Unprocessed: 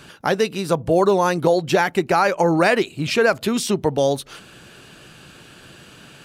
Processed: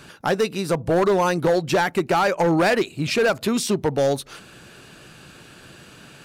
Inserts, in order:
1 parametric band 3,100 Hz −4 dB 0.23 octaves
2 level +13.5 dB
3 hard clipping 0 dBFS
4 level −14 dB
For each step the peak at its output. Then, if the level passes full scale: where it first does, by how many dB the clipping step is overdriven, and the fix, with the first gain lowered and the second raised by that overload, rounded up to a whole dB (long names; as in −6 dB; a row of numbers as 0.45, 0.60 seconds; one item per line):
−3.5, +10.0, 0.0, −14.0 dBFS
step 2, 10.0 dB
step 2 +3.5 dB, step 4 −4 dB